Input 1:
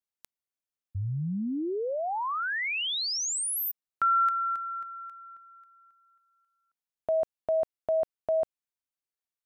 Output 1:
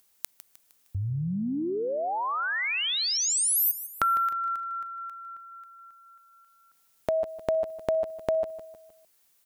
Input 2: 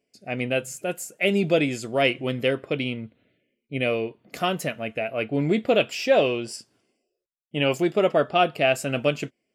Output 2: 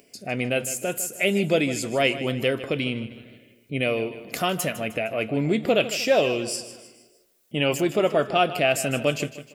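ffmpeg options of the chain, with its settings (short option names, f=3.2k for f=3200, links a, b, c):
-filter_complex "[0:a]highshelf=f=7k:g=9,acompressor=mode=upward:threshold=-26dB:ratio=1.5:attack=47:release=23:knee=2.83:detection=peak,asplit=2[a][b];[b]aecho=0:1:154|308|462|616:0.2|0.0918|0.0422|0.0194[c];[a][c]amix=inputs=2:normalize=0,volume=-1dB"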